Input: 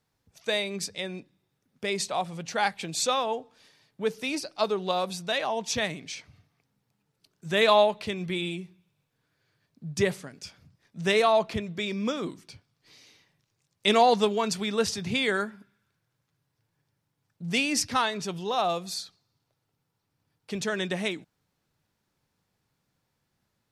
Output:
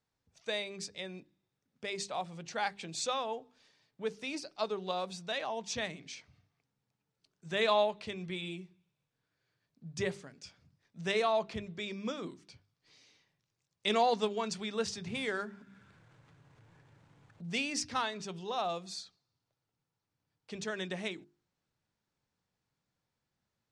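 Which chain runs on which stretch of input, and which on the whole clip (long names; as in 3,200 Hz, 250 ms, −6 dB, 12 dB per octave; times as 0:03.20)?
0:15.08–0:17.50: running median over 9 samples + hum removal 64.33 Hz, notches 4 + upward compression, threshold −32 dBFS
whole clip: low-pass filter 8,400 Hz 24 dB per octave; mains-hum notches 50/100/150/200/250/300/350/400 Hz; level −8 dB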